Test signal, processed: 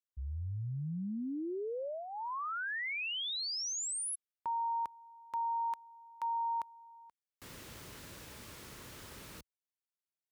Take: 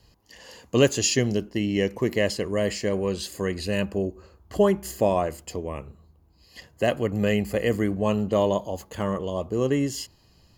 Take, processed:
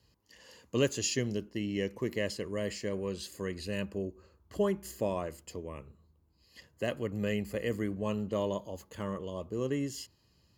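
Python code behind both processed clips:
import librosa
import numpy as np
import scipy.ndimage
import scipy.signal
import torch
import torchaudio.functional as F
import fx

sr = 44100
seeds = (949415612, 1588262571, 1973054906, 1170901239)

y = scipy.signal.sosfilt(scipy.signal.butter(2, 53.0, 'highpass', fs=sr, output='sos'), x)
y = fx.peak_eq(y, sr, hz=740.0, db=-7.5, octaves=0.34)
y = y * librosa.db_to_amplitude(-9.0)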